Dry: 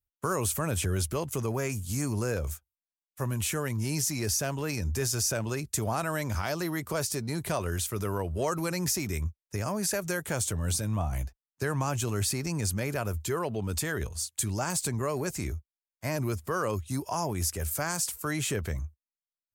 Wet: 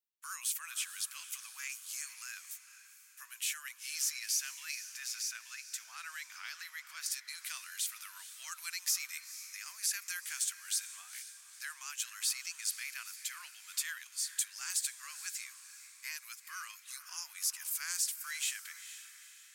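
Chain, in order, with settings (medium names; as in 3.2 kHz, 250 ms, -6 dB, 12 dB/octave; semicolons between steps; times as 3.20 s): Bessel high-pass 2.6 kHz, order 6; peaking EQ 11 kHz -6.5 dB 2 oct, from 4.75 s -14.5 dB, from 7.06 s -5 dB; echo that smears into a reverb 464 ms, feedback 48%, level -12.5 dB; trim +2 dB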